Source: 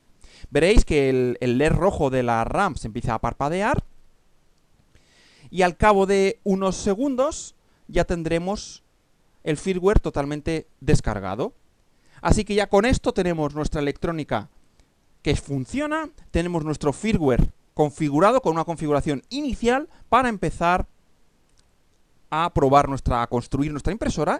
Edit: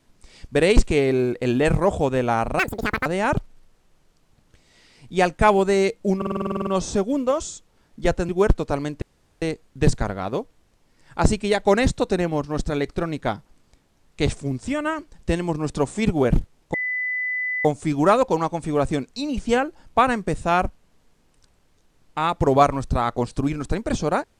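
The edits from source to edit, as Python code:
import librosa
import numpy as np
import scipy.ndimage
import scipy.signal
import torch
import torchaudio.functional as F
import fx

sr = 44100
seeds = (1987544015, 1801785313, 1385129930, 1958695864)

y = fx.edit(x, sr, fx.speed_span(start_s=2.59, length_s=0.88, speed=1.88),
    fx.stutter(start_s=6.58, slice_s=0.05, count=11),
    fx.cut(start_s=8.2, length_s=1.55),
    fx.insert_room_tone(at_s=10.48, length_s=0.4),
    fx.insert_tone(at_s=17.8, length_s=0.91, hz=2000.0, db=-22.5), tone=tone)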